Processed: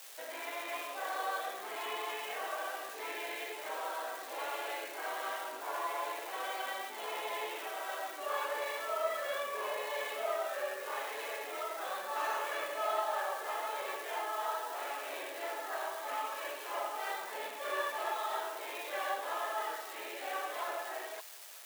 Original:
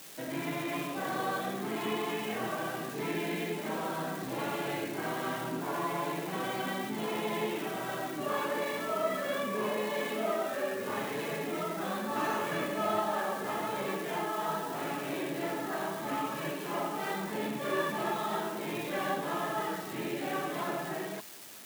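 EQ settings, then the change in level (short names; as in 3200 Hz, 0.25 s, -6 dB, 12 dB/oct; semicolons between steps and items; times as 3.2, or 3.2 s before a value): HPF 520 Hz 24 dB/oct; -2.0 dB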